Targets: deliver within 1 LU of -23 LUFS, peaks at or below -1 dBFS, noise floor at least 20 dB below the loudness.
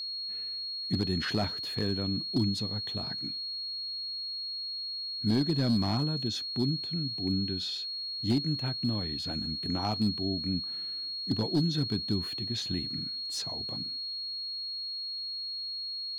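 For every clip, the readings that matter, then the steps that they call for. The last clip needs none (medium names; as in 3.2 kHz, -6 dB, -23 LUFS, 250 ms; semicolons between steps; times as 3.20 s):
clipped samples 0.3%; clipping level -20.5 dBFS; steady tone 4.3 kHz; tone level -34 dBFS; loudness -31.0 LUFS; peak level -20.5 dBFS; loudness target -23.0 LUFS
-> clip repair -20.5 dBFS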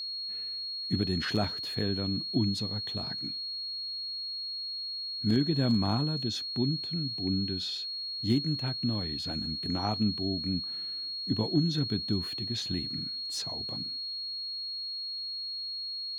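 clipped samples 0.0%; steady tone 4.3 kHz; tone level -34 dBFS
-> band-stop 4.3 kHz, Q 30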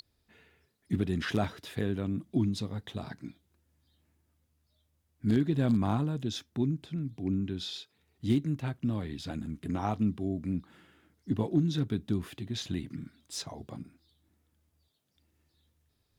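steady tone not found; loudness -32.5 LUFS; peak level -15.0 dBFS; loudness target -23.0 LUFS
-> trim +9.5 dB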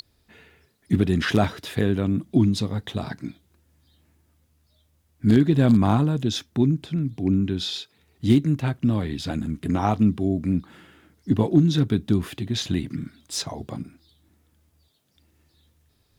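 loudness -23.0 LUFS; peak level -5.5 dBFS; noise floor -66 dBFS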